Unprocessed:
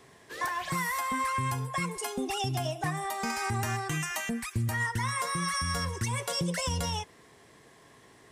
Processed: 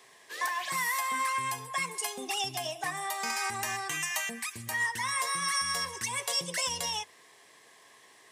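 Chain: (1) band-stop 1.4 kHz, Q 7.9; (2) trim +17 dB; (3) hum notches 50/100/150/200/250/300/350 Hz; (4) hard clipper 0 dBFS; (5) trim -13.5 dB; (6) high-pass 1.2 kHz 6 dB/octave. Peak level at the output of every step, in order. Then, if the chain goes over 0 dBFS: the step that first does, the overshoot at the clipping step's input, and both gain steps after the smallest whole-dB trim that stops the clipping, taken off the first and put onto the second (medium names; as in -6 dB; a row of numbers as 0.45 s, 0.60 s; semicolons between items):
-21.0 dBFS, -4.0 dBFS, -3.5 dBFS, -3.5 dBFS, -17.0 dBFS, -17.0 dBFS; nothing clips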